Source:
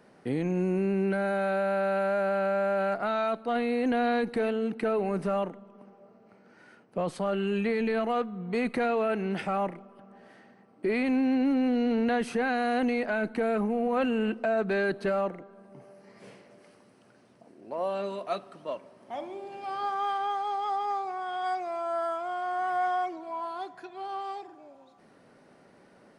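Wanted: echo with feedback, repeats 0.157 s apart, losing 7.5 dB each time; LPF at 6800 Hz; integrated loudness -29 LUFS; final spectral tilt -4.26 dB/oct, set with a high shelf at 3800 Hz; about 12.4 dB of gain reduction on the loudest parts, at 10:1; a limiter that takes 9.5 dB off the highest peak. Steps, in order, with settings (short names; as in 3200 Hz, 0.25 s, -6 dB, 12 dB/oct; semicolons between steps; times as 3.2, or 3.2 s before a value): LPF 6800 Hz; high shelf 3800 Hz +7 dB; compressor 10:1, threshold -36 dBFS; limiter -33.5 dBFS; feedback echo 0.157 s, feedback 42%, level -7.5 dB; gain +12 dB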